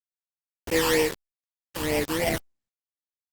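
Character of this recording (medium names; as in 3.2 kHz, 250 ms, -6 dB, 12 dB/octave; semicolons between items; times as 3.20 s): aliases and images of a low sample rate 1.4 kHz, jitter 20%; phasing stages 12, 3.2 Hz, lowest notch 640–1300 Hz; a quantiser's noise floor 6-bit, dither none; Opus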